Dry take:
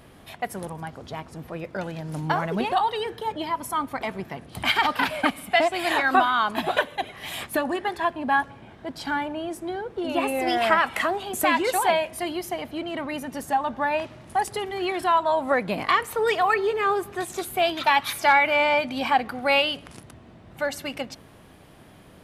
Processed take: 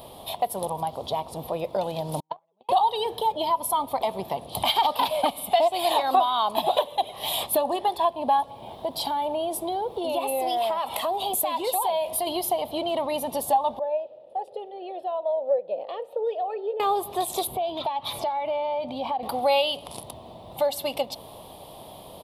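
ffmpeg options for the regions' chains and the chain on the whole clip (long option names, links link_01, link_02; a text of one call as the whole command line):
ffmpeg -i in.wav -filter_complex "[0:a]asettb=1/sr,asplit=3[link_01][link_02][link_03];[link_01]atrim=end=2.204[link_04];[link_02]atrim=start=2.2:end=2.69,asetpts=PTS-STARTPTS,afade=type=in:duration=0.004:curve=qsin,afade=type=out:start_time=0.486:duration=0.004:curve=qsin,agate=range=-52dB:threshold=-19dB:ratio=16:release=100:detection=peak,highpass=160,lowpass=3200[link_05];[link_03]atrim=start=2.686[link_06];[link_04][link_05]acrossfade=duration=0.004:curve1=hsin:curve2=qsin[link_07];[link_07][link_06]acrossfade=duration=0.004:curve1=qsin:curve2=hsin,asettb=1/sr,asplit=3[link_08][link_09][link_10];[link_08]atrim=end=8.484[link_11];[link_09]atrim=start=8.48:end=12.27,asetpts=PTS-STARTPTS,afade=type=in:duration=0.004:curve=qsin,afade=type=out:start_time=3.786:duration=0.004:curve=qsin,highshelf=frequency=12000:gain=6,acompressor=threshold=-30dB:ratio=3:attack=3.2:release=140:knee=1:detection=peak[link_12];[link_10]atrim=start=12.266[link_13];[link_11][link_12]acrossfade=duration=0.004:curve1=hsin:curve2=qsin[link_14];[link_14][link_13]acrossfade=duration=0.004:curve1=qsin:curve2=hsin,asettb=1/sr,asplit=3[link_15][link_16][link_17];[link_15]atrim=end=13.794[link_18];[link_16]atrim=start=13.79:end=16.8,asetpts=PTS-STARTPTS,afade=type=in:duration=0.004:curve=qsin,afade=type=out:start_time=3.006:duration=0.004:curve=qsin,asplit=3[link_19][link_20][link_21];[link_19]bandpass=frequency=530:width_type=q:width=8,volume=0dB[link_22];[link_20]bandpass=frequency=1840:width_type=q:width=8,volume=-6dB[link_23];[link_21]bandpass=frequency=2480:width_type=q:width=8,volume=-9dB[link_24];[link_22][link_23][link_24]amix=inputs=3:normalize=0,highshelf=frequency=1500:width_type=q:width=3:gain=-7[link_25];[link_17]atrim=start=16.796[link_26];[link_18][link_25]acrossfade=duration=0.004:curve1=hsin:curve2=qsin[link_27];[link_27][link_26]acrossfade=duration=0.004:curve1=qsin:curve2=hsin,asettb=1/sr,asplit=3[link_28][link_29][link_30];[link_28]atrim=end=17.474[link_31];[link_29]atrim=start=17.47:end=19.23,asetpts=PTS-STARTPTS,afade=type=in:duration=0.004:curve=qsin,afade=type=out:start_time=1.756:duration=0.004:curve=qsin,highpass=frequency=210:poles=1,aemphasis=mode=reproduction:type=riaa,acompressor=threshold=-33dB:ratio=6:attack=3.2:release=140:knee=1:detection=peak[link_32];[link_30]atrim=start=19.226[link_33];[link_31][link_32]acrossfade=duration=0.004:curve1=hsin:curve2=qsin[link_34];[link_34][link_33]acrossfade=duration=0.004:curve1=qsin:curve2=hsin,firequalizer=gain_entry='entry(300,0);entry(570,12);entry(970,12);entry(1500,-12);entry(3500,13);entry(6300,0);entry(11000,14)':delay=0.05:min_phase=1,acompressor=threshold=-26dB:ratio=2" out.wav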